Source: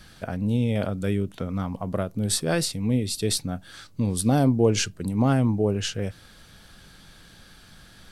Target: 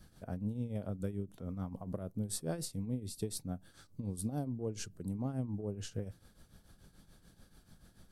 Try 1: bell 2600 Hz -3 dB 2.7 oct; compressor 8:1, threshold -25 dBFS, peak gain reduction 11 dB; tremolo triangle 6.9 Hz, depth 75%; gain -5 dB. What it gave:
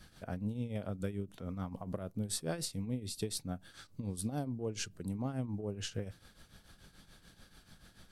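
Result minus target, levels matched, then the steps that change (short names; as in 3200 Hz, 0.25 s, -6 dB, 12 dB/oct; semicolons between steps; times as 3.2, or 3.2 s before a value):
2000 Hz band +6.5 dB
change: bell 2600 Hz -12.5 dB 2.7 oct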